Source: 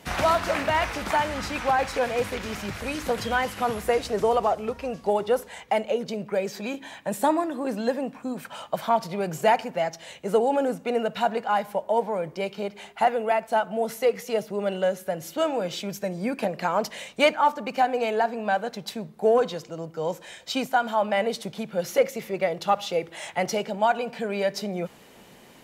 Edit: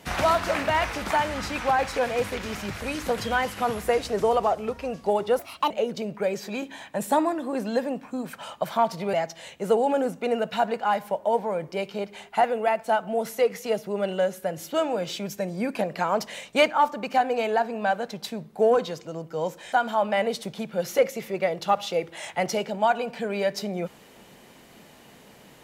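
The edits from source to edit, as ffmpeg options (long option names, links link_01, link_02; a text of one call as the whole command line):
ffmpeg -i in.wav -filter_complex "[0:a]asplit=5[link_01][link_02][link_03][link_04][link_05];[link_01]atrim=end=5.394[link_06];[link_02]atrim=start=5.39:end=5.82,asetpts=PTS-STARTPTS,asetrate=60417,aresample=44100[link_07];[link_03]atrim=start=5.816:end=9.252[link_08];[link_04]atrim=start=9.768:end=20.362[link_09];[link_05]atrim=start=20.718[link_10];[link_06][link_07]acrossfade=duration=0.004:curve1=hsin:curve2=hsin[link_11];[link_11][link_08]acrossfade=duration=0.004:curve1=hsin:curve2=hsin[link_12];[link_12][link_09]acrossfade=duration=0.004:curve1=hsin:curve2=hsin[link_13];[link_13][link_10]acrossfade=duration=0.004:curve1=hsin:curve2=hsin" out.wav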